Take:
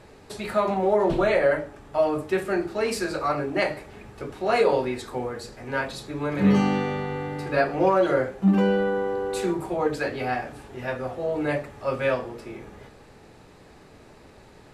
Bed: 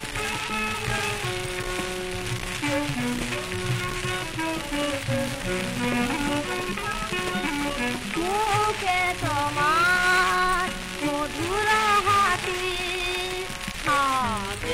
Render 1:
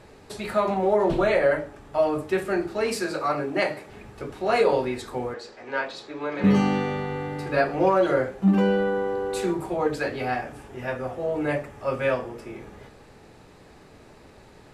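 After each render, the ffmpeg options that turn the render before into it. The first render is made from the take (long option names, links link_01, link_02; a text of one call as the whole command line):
ffmpeg -i in.wav -filter_complex "[0:a]asettb=1/sr,asplit=3[link_01][link_02][link_03];[link_01]atrim=end=2.954[link_04];[link_02]atrim=start=2.95:end=3.9,asetpts=PTS-STARTPTS,afade=type=in:duration=0.004:curve=qsin,afade=type=out:start_time=0.946:duration=0.004:curve=qsin,highpass=130[link_05];[link_03]atrim=start=3.896[link_06];[link_04][link_05]acrossfade=duration=0.004:curve1=hsin:curve2=qsin[link_07];[link_07][link_06]acrossfade=duration=0.004:curve1=qsin:curve2=hsin,asettb=1/sr,asplit=3[link_08][link_09][link_10];[link_08]atrim=end=5.344[link_11];[link_09]atrim=start=5.34:end=6.44,asetpts=PTS-STARTPTS,afade=type=in:duration=0.004:curve=qsin,afade=type=out:start_time=1.096:duration=0.004:curve=qsin,acrossover=split=280 6500:gain=0.126 1 0.0708[link_12][link_13][link_14];[link_12][link_13][link_14]amix=inputs=3:normalize=0[link_15];[link_10]atrim=start=6.436[link_16];[link_11][link_15]acrossfade=duration=0.004:curve1=hsin:curve2=qsin[link_17];[link_17][link_16]acrossfade=duration=0.004:curve1=qsin:curve2=hsin,asettb=1/sr,asplit=3[link_18][link_19][link_20];[link_18]atrim=end=10.414[link_21];[link_19]atrim=start=10.41:end=12.56,asetpts=PTS-STARTPTS,afade=type=in:duration=0.004:curve=qsin,afade=type=out:start_time=2.146:duration=0.004:curve=qsin,equalizer=frequency=4100:width=4.4:gain=-6.5[link_22];[link_20]atrim=start=12.556[link_23];[link_21][link_22]acrossfade=duration=0.004:curve1=hsin:curve2=qsin[link_24];[link_24][link_23]acrossfade=duration=0.004:curve1=qsin:curve2=hsin" out.wav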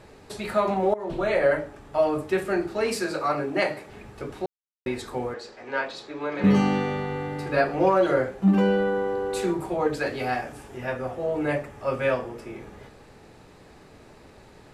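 ffmpeg -i in.wav -filter_complex "[0:a]asettb=1/sr,asplit=3[link_01][link_02][link_03];[link_01]atrim=end=10.064[link_04];[link_02]atrim=start=10.06:end=10.78,asetpts=PTS-STARTPTS,afade=type=in:duration=0.004:curve=qsin,afade=type=out:start_time=0.716:duration=0.004:curve=qsin,bass=frequency=250:gain=-1,treble=frequency=4000:gain=5[link_05];[link_03]atrim=start=10.776[link_06];[link_04][link_05]acrossfade=duration=0.004:curve1=hsin:curve2=qsin[link_07];[link_07][link_06]acrossfade=duration=0.004:curve1=qsin:curve2=hsin,asplit=4[link_08][link_09][link_10][link_11];[link_08]atrim=end=0.94,asetpts=PTS-STARTPTS,afade=type=out:start_time=0.936:duration=0.004:curve=hsin:silence=0.112202[link_12];[link_09]atrim=start=0.94:end=4.46,asetpts=PTS-STARTPTS,afade=type=in:duration=0.52:silence=0.112202,afade=type=out:start_time=3.516:duration=0.004:curve=hsin[link_13];[link_10]atrim=start=4.46:end=4.86,asetpts=PTS-STARTPTS,volume=0[link_14];[link_11]atrim=start=4.86,asetpts=PTS-STARTPTS,afade=type=in:duration=0.004:curve=hsin[link_15];[link_12][link_13][link_14][link_15]concat=n=4:v=0:a=1" out.wav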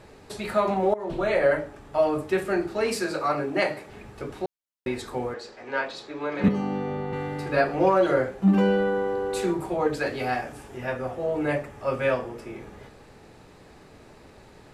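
ffmpeg -i in.wav -filter_complex "[0:a]asettb=1/sr,asplit=3[link_01][link_02][link_03];[link_01]atrim=end=6.484[link_04];[link_02]atrim=start=6.48:end=7.13,asetpts=PTS-STARTPTS,afade=type=in:duration=0.004:curve=qsin,afade=type=out:start_time=0.646:duration=0.004:curve=qsin,acrossover=split=210|1100[link_05][link_06][link_07];[link_05]acompressor=threshold=-34dB:ratio=4[link_08];[link_06]acompressor=threshold=-27dB:ratio=4[link_09];[link_07]acompressor=threshold=-48dB:ratio=4[link_10];[link_08][link_09][link_10]amix=inputs=3:normalize=0[link_11];[link_03]atrim=start=7.126[link_12];[link_04][link_11]acrossfade=duration=0.004:curve1=hsin:curve2=qsin[link_13];[link_13][link_12]acrossfade=duration=0.004:curve1=qsin:curve2=hsin" out.wav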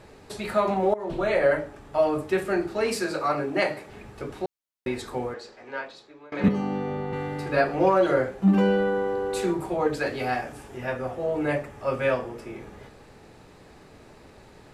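ffmpeg -i in.wav -filter_complex "[0:a]asplit=2[link_01][link_02];[link_01]atrim=end=6.32,asetpts=PTS-STARTPTS,afade=type=out:start_time=5.16:duration=1.16:silence=0.0794328[link_03];[link_02]atrim=start=6.32,asetpts=PTS-STARTPTS,afade=type=in:duration=0.004:curve=hsin:silence=0.0794328[link_04];[link_03][link_04]concat=n=2:v=0:a=1" out.wav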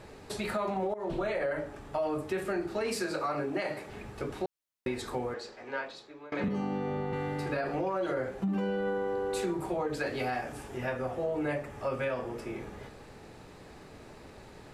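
ffmpeg -i in.wav -af "alimiter=limit=-17.5dB:level=0:latency=1:release=49,acompressor=threshold=-31dB:ratio=2.5" out.wav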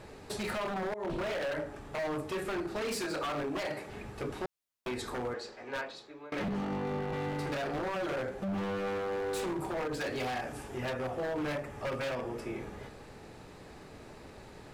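ffmpeg -i in.wav -af "aeval=exprs='0.0355*(abs(mod(val(0)/0.0355+3,4)-2)-1)':channel_layout=same" out.wav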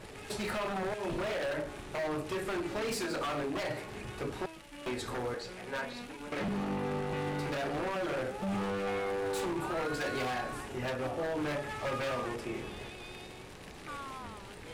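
ffmpeg -i in.wav -i bed.wav -filter_complex "[1:a]volume=-21dB[link_01];[0:a][link_01]amix=inputs=2:normalize=0" out.wav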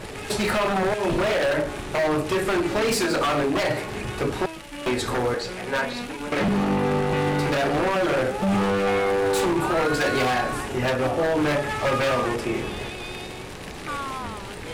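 ffmpeg -i in.wav -af "volume=12dB" out.wav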